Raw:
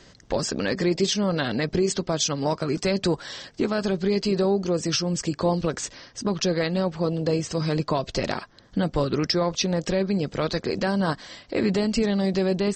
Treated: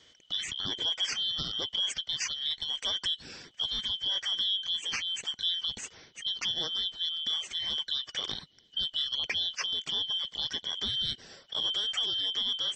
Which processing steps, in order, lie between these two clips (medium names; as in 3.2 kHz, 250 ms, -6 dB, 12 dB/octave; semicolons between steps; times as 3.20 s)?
four frequency bands reordered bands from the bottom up 2413; trim -8.5 dB